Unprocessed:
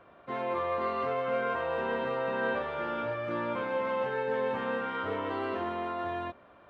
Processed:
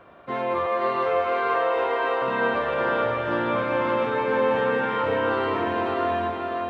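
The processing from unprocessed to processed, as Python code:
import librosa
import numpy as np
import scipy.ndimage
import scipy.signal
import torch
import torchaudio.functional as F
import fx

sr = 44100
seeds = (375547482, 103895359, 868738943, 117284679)

p1 = fx.steep_highpass(x, sr, hz=280.0, slope=96, at=(0.66, 2.22))
p2 = p1 + fx.echo_diffused(p1, sr, ms=489, feedback_pct=48, wet_db=-3, dry=0)
y = F.gain(torch.from_numpy(p2), 6.5).numpy()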